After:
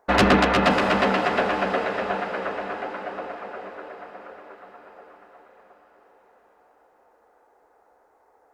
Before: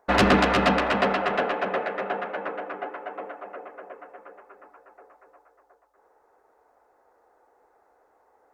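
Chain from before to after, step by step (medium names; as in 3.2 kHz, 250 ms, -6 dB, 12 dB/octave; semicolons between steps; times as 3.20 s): echo that smears into a reverb 614 ms, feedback 49%, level -9.5 dB; trim +1.5 dB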